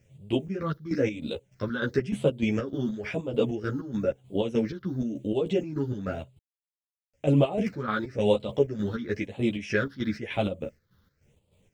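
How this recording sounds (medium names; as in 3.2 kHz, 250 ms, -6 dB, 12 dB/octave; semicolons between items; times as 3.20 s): a quantiser's noise floor 12-bit, dither none; phasing stages 6, 0.98 Hz, lowest notch 650–1600 Hz; chopped level 3.3 Hz, depth 60%, duty 55%; a shimmering, thickened sound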